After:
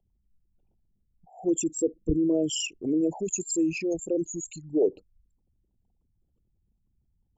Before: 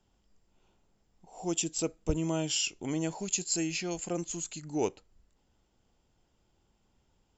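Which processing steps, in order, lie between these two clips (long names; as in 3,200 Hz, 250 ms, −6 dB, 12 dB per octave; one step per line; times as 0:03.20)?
spectral envelope exaggerated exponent 3
dynamic equaliser 350 Hz, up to +8 dB, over −44 dBFS, Q 0.71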